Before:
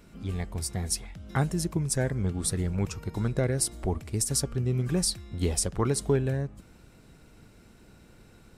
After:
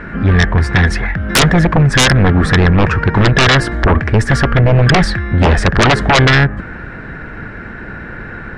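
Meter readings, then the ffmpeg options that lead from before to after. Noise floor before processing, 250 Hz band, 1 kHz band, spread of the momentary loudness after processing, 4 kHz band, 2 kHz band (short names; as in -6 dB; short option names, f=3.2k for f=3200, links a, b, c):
-55 dBFS, +17.0 dB, +24.0 dB, 19 LU, +20.0 dB, +29.0 dB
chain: -af "lowpass=f=1.7k:t=q:w=7.4,aeval=exprs='0.335*sin(PI/2*6.31*val(0)/0.335)':c=same,aeval=exprs='0.355*(cos(1*acos(clip(val(0)/0.355,-1,1)))-cos(1*PI/2))+0.00251*(cos(5*acos(clip(val(0)/0.355,-1,1)))-cos(5*PI/2))':c=same,volume=4dB"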